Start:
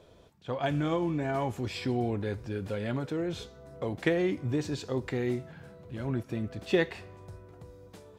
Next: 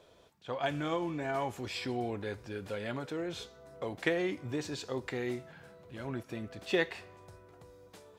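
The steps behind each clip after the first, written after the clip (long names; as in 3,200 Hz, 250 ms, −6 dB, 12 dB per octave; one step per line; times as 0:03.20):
low-shelf EQ 340 Hz −10.5 dB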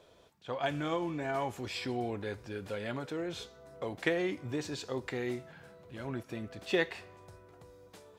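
no processing that can be heard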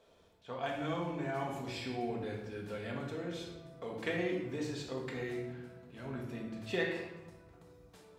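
rectangular room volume 500 cubic metres, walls mixed, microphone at 1.6 metres
level −7 dB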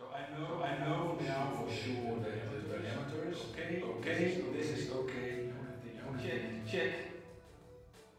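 multi-voice chorus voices 4, 0.8 Hz, delay 27 ms, depth 1.5 ms
backwards echo 490 ms −5.5 dB
level +2 dB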